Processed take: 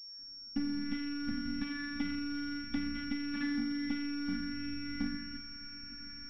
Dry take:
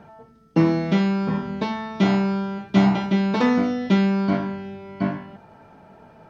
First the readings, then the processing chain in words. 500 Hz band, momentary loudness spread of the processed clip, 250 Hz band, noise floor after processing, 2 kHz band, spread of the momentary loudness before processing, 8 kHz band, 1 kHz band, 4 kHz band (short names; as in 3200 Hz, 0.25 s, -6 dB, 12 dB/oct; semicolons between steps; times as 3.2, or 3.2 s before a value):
under -30 dB, 9 LU, -14.5 dB, -49 dBFS, -10.0 dB, 9 LU, n/a, -22.0 dB, -5.5 dB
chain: opening faded in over 1.68 s; compressor 5:1, threshold -34 dBFS, peak gain reduction 19.5 dB; dynamic EQ 370 Hz, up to +7 dB, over -49 dBFS, Q 0.72; robotiser 288 Hz; elliptic band-stop 240–1500 Hz, stop band 40 dB; thin delay 0.363 s, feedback 71%, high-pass 1600 Hz, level -14 dB; soft clip -31.5 dBFS, distortion -22 dB; low shelf 110 Hz +5.5 dB; pulse-width modulation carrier 5500 Hz; gain +7 dB